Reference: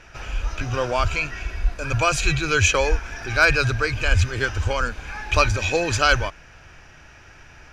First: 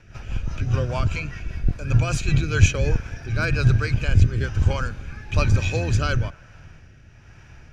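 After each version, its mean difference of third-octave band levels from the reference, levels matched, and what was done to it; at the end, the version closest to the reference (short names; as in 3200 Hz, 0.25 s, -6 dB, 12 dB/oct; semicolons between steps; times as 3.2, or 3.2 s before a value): 7.0 dB: octaver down 2 oct, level +3 dB; bell 110 Hz +11 dB 1.7 oct; rotary speaker horn 5 Hz, later 1.1 Hz, at 2.2; on a send: band-limited delay 0.104 s, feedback 68%, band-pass 1100 Hz, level -23 dB; on the sum: gain -4.5 dB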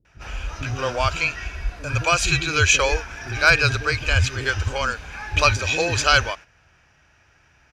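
5.0 dB: HPF 47 Hz; gate -37 dBFS, range -10 dB; dynamic EQ 4100 Hz, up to +4 dB, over -34 dBFS, Q 0.7; bands offset in time lows, highs 50 ms, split 340 Hz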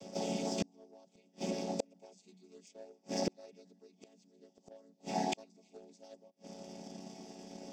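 17.5 dB: chord vocoder minor triad, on F#3; EQ curve 210 Hz 0 dB, 730 Hz +1 dB, 1400 Hz -28 dB, 5200 Hz +7 dB; flipped gate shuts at -26 dBFS, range -36 dB; in parallel at -5 dB: crossover distortion -52 dBFS; on the sum: gain +1.5 dB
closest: second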